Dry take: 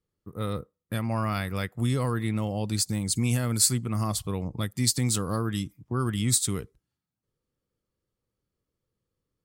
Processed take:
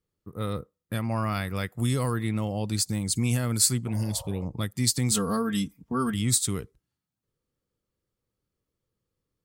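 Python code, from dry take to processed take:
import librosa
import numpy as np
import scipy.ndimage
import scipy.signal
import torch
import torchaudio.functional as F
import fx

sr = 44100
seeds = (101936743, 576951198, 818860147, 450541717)

y = fx.high_shelf(x, sr, hz=5400.0, db=7.5, at=(1.66, 2.16))
y = fx.spec_repair(y, sr, seeds[0], start_s=3.9, length_s=0.52, low_hz=490.0, high_hz=1400.0, source='after')
y = fx.comb(y, sr, ms=4.4, depth=0.92, at=(5.11, 6.14))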